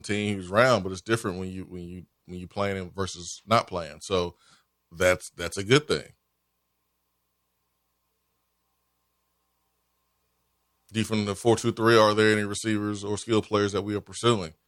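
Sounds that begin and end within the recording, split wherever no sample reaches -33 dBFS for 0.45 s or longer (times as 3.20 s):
5.00–6.03 s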